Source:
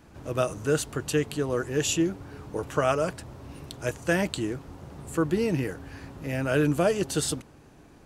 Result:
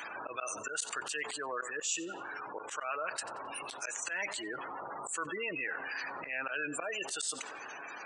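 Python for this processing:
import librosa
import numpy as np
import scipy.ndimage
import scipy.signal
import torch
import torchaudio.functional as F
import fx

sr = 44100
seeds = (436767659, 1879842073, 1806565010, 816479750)

y = scipy.signal.sosfilt(scipy.signal.cheby1(3, 1.0, 8600.0, 'lowpass', fs=sr, output='sos'), x)
y = fx.spec_gate(y, sr, threshold_db=-25, keep='strong')
y = scipy.signal.sosfilt(scipy.signal.butter(2, 1300.0, 'highpass', fs=sr, output='sos'), y)
y = fx.high_shelf(y, sr, hz=3900.0, db=11.0)
y = fx.auto_swell(y, sr, attack_ms=175.0)
y = fx.rider(y, sr, range_db=3, speed_s=0.5)
y = fx.echo_tape(y, sr, ms=93, feedback_pct=66, wet_db=-21.5, lp_hz=2000.0, drive_db=14.0, wow_cents=35)
y = fx.env_flatten(y, sr, amount_pct=70)
y = y * 10.0 ** (-6.5 / 20.0)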